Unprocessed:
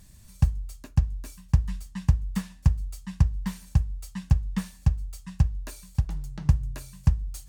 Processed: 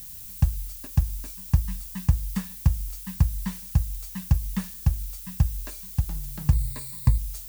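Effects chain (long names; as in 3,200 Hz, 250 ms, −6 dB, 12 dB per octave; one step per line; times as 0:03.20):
background noise violet −41 dBFS
0:06.52–0:07.18: EQ curve with evenly spaced ripples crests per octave 0.97, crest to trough 12 dB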